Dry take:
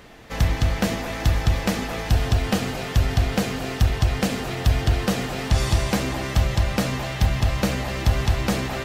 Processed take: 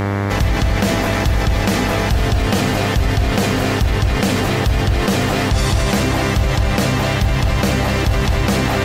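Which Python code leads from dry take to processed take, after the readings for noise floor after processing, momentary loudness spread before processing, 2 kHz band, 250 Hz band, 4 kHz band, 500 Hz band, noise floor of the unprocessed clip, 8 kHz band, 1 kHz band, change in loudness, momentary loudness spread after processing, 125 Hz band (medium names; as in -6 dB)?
-19 dBFS, 4 LU, +8.5 dB, +7.5 dB, +7.0 dB, +8.5 dB, -31 dBFS, +6.5 dB, +8.5 dB, +6.5 dB, 1 LU, +5.5 dB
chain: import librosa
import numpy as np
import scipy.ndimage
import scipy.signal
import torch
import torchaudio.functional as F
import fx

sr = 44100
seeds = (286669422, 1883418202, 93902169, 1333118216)

y = fx.dmg_buzz(x, sr, base_hz=100.0, harmonics=23, level_db=-32.0, tilt_db=-5, odd_only=False)
y = fx.env_flatten(y, sr, amount_pct=70)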